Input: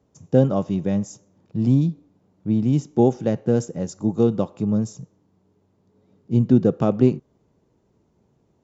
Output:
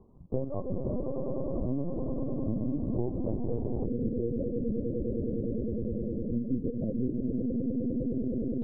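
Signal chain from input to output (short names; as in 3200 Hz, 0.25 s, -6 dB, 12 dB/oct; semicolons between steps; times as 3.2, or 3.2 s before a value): bin magnitudes rounded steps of 15 dB; dynamic EQ 110 Hz, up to -5 dB, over -28 dBFS, Q 0.78; upward compressor, threshold -40 dBFS; swelling echo 0.102 s, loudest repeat 8, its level -9 dB; compressor 4:1, threshold -21 dBFS, peak gain reduction 9 dB; elliptic low-pass 1100 Hz, stop band 50 dB, from 3.84 s 550 Hz; LPC vocoder at 8 kHz pitch kept; low shelf 330 Hz +4.5 dB; gain -9 dB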